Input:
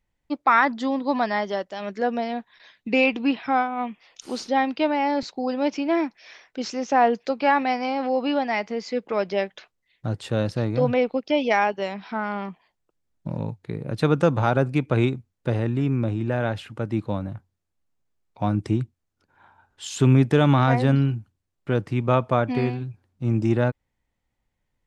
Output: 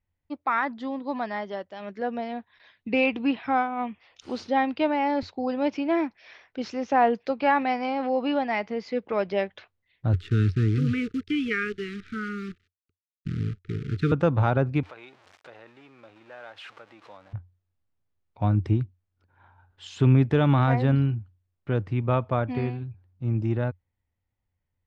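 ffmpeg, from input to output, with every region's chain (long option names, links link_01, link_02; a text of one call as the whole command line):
ffmpeg -i in.wav -filter_complex "[0:a]asettb=1/sr,asplit=3[link_01][link_02][link_03];[link_01]atrim=end=10.134[link_04];[link_02]atrim=start=10.13:end=14.12,asetpts=PTS-STARTPTS,afade=type=in:duration=0.004:curve=qsin,afade=type=out:start_time=3.986:duration=0.004:curve=qsin,aemphasis=mode=reproduction:type=50fm,acrusher=bits=7:dc=4:mix=0:aa=0.000001,asuperstop=centerf=740:order=20:qfactor=0.96[link_05];[link_03]atrim=start=14.116[link_06];[link_04][link_05]acrossfade=duration=0.004:curve1=hsin:curve2=qsin[link_07];[link_07][link_06]acrossfade=duration=0.004:curve1=qsin:curve2=hsin,asettb=1/sr,asplit=3[link_08][link_09][link_10];[link_08]atrim=end=14.834[link_11];[link_09]atrim=start=14.83:end=17.33,asetpts=PTS-STARTPTS,afade=type=in:duration=0.004:curve=qsin,afade=type=out:start_time=2.496:duration=0.004:curve=qsin,aeval=exprs='val(0)+0.5*0.02*sgn(val(0))':channel_layout=same,acompressor=threshold=-37dB:ratio=2:attack=3.2:release=140:knee=1:detection=peak,highpass=740[link_12];[link_10]atrim=start=17.326[link_13];[link_11][link_12]acrossfade=duration=0.004:curve1=hsin:curve2=qsin[link_14];[link_14][link_13]acrossfade=duration=0.004:curve1=qsin:curve2=hsin,lowpass=3700,equalizer=frequency=89:width=2.9:gain=14.5,dynaudnorm=framelen=160:gausssize=31:maxgain=8dB,volume=-7.5dB" out.wav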